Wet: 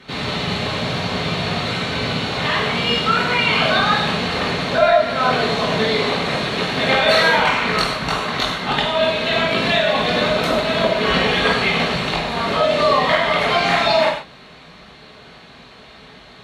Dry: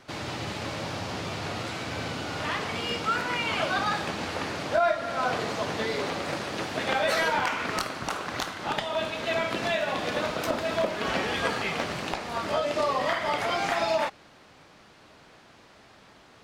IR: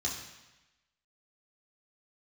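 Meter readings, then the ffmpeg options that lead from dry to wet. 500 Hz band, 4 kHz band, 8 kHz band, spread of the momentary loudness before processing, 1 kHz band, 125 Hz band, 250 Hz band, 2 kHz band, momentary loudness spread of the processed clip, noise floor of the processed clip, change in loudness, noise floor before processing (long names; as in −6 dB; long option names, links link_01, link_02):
+10.5 dB, +13.5 dB, +4.5 dB, 7 LU, +9.5 dB, +12.5 dB, +11.0 dB, +11.0 dB, 6 LU, −43 dBFS, +11.0 dB, −54 dBFS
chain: -filter_complex "[1:a]atrim=start_sample=2205,afade=type=out:start_time=0.14:duration=0.01,atrim=end_sample=6615,asetrate=26460,aresample=44100[link_01];[0:a][link_01]afir=irnorm=-1:irlink=0,volume=2.5dB"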